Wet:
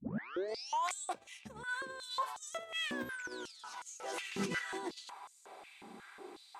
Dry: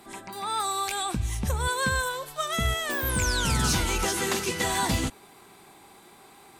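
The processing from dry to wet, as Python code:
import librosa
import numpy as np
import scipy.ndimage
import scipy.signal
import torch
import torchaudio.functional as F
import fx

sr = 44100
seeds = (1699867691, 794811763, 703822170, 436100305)

y = fx.tape_start_head(x, sr, length_s=0.96)
y = scipy.signal.sosfilt(scipy.signal.butter(2, 8600.0, 'lowpass', fs=sr, output='sos'), y)
y = fx.high_shelf(y, sr, hz=2800.0, db=-6.5)
y = fx.over_compress(y, sr, threshold_db=-35.0, ratio=-1.0)
y = fx.filter_held_highpass(y, sr, hz=5.5, low_hz=210.0, high_hz=6800.0)
y = y * librosa.db_to_amplitude(-8.0)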